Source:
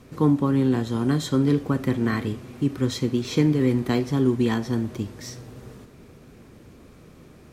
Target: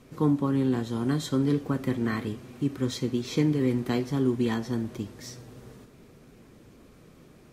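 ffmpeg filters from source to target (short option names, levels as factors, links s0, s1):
-af "equalizer=f=79:t=o:w=0.7:g=-5.5,volume=0.631" -ar 48000 -c:a libvorbis -b:a 48k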